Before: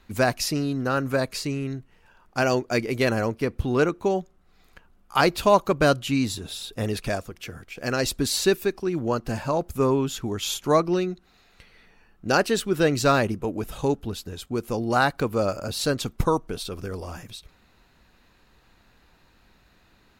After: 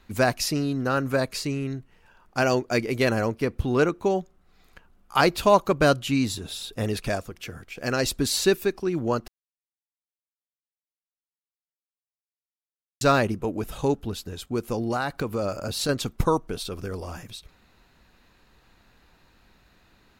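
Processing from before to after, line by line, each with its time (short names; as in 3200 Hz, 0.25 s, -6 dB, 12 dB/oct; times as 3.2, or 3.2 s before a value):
9.28–13.01 mute
14.72–15.89 compressor 5:1, threshold -22 dBFS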